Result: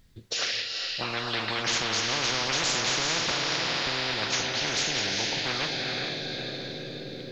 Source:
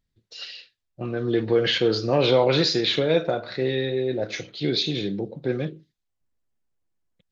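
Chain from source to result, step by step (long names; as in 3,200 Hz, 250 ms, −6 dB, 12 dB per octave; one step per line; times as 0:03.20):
0:03.31–0:03.87: Butterworth high-pass 550 Hz 72 dB per octave
feedback delay with all-pass diffusion 456 ms, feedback 50%, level −13 dB
reverb whose tail is shaped and stops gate 450 ms rising, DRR 10.5 dB
every bin compressed towards the loudest bin 10 to 1
level −6 dB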